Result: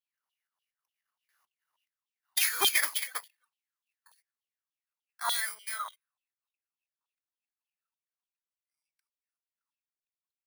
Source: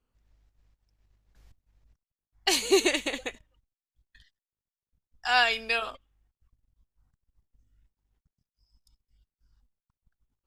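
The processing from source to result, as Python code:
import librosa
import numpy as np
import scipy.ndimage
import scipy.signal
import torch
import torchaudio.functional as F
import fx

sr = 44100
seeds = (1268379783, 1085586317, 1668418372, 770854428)

y = fx.bit_reversed(x, sr, seeds[0], block=16)
y = fx.doppler_pass(y, sr, speed_mps=16, closest_m=14.0, pass_at_s=3.0)
y = fx.filter_lfo_highpass(y, sr, shape='saw_down', hz=3.4, low_hz=920.0, high_hz=3400.0, q=6.9)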